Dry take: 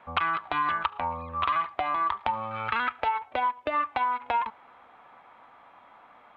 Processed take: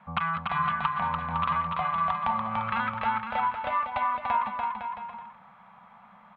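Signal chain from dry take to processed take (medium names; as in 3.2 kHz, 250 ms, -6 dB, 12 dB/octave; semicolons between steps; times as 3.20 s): FFT filter 100 Hz 0 dB, 200 Hz +15 dB, 310 Hz -21 dB, 500 Hz -8 dB, 920 Hz -1 dB, 6 kHz -7 dB; bouncing-ball echo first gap 290 ms, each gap 0.75×, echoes 5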